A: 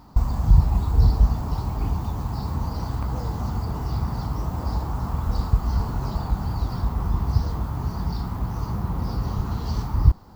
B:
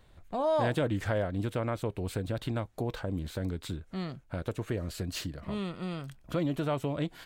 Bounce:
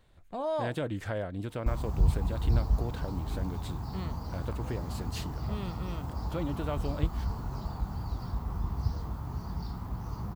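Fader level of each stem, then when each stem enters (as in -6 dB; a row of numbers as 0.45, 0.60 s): -9.5, -4.0 dB; 1.50, 0.00 s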